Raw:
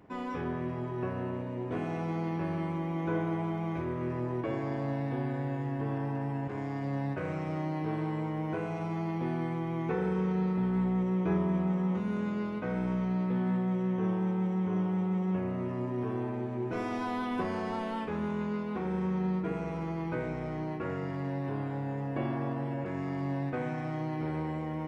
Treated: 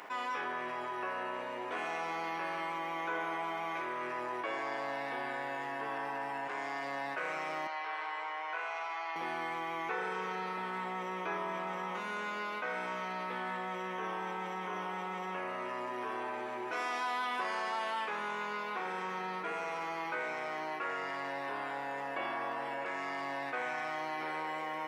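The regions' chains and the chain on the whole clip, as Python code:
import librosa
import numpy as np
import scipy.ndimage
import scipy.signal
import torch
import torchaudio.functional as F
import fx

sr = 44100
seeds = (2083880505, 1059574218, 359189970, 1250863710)

y = fx.chain(x, sr, fx.highpass(hz=800.0, slope=12),
    fx.air_absorb(metres=110.0), at=(7.67, 9.16))
y = scipy.signal.sosfilt(scipy.signal.butter(2, 1000.0, 'highpass', fs=sr, output='sos'), y)
y = fx.env_flatten(y, sr, amount_pct=50)
y = F.gain(torch.from_numpy(y), 4.0).numpy()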